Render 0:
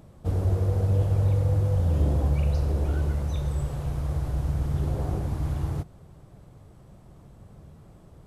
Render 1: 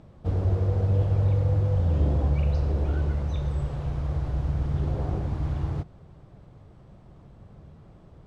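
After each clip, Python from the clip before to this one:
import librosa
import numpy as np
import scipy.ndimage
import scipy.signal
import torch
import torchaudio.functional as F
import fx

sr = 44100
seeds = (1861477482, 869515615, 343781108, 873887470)

y = scipy.signal.sosfilt(scipy.signal.butter(2, 4500.0, 'lowpass', fs=sr, output='sos'), x)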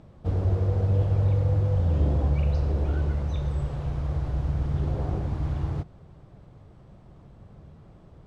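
y = x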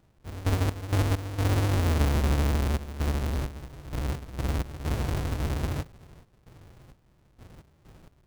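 y = fx.halfwave_hold(x, sr)
y = fx.step_gate(y, sr, bpm=65, pattern='..x.x.xxxxxx.xx', floor_db=-12.0, edge_ms=4.5)
y = F.gain(torch.from_numpy(y), -5.5).numpy()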